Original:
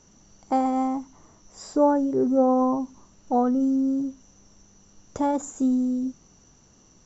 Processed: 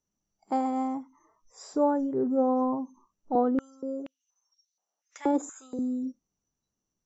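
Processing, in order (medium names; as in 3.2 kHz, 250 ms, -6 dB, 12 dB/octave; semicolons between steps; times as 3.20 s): spectral noise reduction 24 dB; 3.35–5.79 s: step-sequenced high-pass 4.2 Hz 340–4100 Hz; trim -5 dB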